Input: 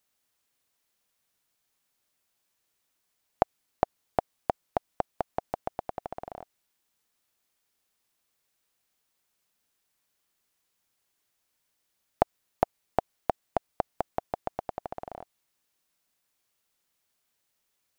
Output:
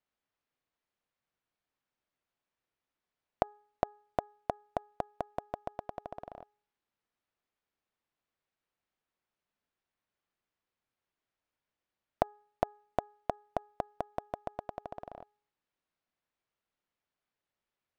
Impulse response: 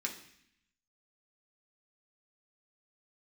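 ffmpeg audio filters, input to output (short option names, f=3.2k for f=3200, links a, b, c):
-af "adynamicsmooth=sensitivity=7.5:basefreq=3k,bandreject=f=416.3:t=h:w=4,bandreject=f=832.6:t=h:w=4,bandreject=f=1.2489k:t=h:w=4,bandreject=f=1.6652k:t=h:w=4,volume=-5dB"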